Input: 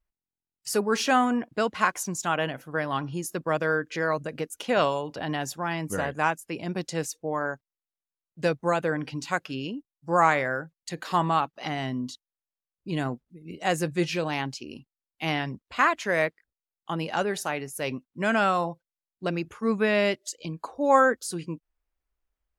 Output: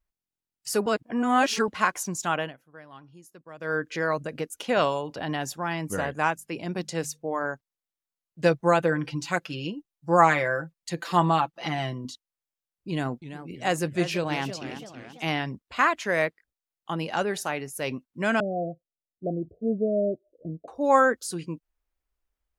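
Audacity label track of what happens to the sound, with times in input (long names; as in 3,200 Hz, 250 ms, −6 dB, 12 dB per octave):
0.860000	1.680000	reverse
2.350000	3.790000	duck −18.5 dB, fades 0.22 s
6.340000	7.440000	mains-hum notches 50/100/150/200/250 Hz
8.430000	12.050000	comb filter 5.9 ms
12.890000	15.290000	feedback echo with a swinging delay time 330 ms, feedback 50%, depth 208 cents, level −11.5 dB
18.400000	20.680000	Chebyshev low-pass filter 720 Hz, order 10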